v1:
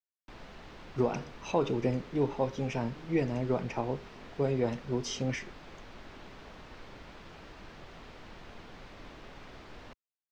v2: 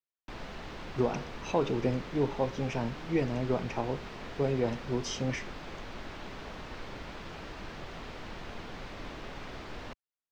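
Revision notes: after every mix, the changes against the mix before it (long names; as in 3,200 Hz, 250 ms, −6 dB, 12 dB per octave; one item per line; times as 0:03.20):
background +6.5 dB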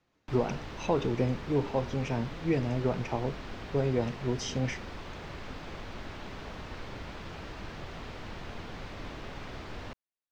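speech: entry −0.65 s
master: add parametric band 87 Hz +5 dB 1.5 octaves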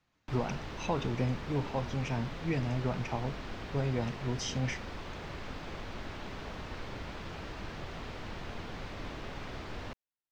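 speech: add parametric band 410 Hz −8 dB 1.3 octaves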